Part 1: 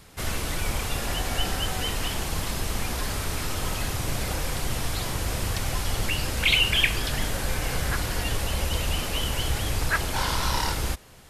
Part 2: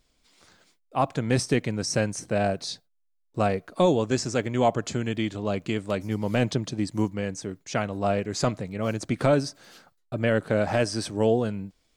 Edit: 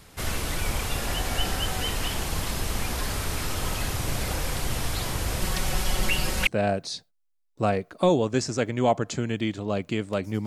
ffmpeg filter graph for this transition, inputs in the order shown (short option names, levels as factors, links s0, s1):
-filter_complex "[0:a]asettb=1/sr,asplit=3[s0][s1][s2];[s0]atrim=end=5.414[s3];[s1]atrim=start=5.41:end=6.47,asetpts=PTS-STARTPTS,afade=t=in:d=0.004:c=qsin,afade=t=out:st=1.056:d=0.004:c=qsin,aecho=1:1:5.4:0.69,atrim=end_sample=46746[s4];[s2]atrim=start=6.466[s5];[s3][s4]acrossfade=d=0.004:c1=hsin:c2=qsin[s6];[s6][s5]acrossfade=d=0.004:c1=qsin:c2=hsin,apad=whole_dur=10.46,atrim=end=10.46,atrim=end=6.472[s7];[1:a]atrim=start=2.238:end=6.23[s8];[s7][s8]acrossfade=d=0.004:c1=hsin:c2=hsin"